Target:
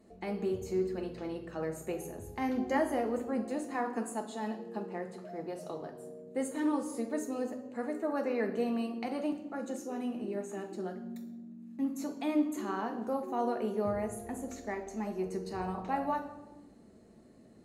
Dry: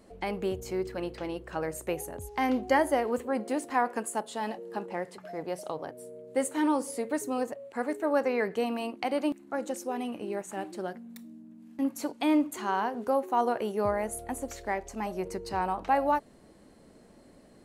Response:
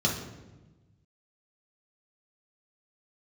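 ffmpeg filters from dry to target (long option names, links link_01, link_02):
-filter_complex "[0:a]asplit=2[link_01][link_02];[1:a]atrim=start_sample=2205,highshelf=frequency=4500:gain=7.5[link_03];[link_02][link_03]afir=irnorm=-1:irlink=0,volume=-12.5dB[link_04];[link_01][link_04]amix=inputs=2:normalize=0,volume=-8.5dB"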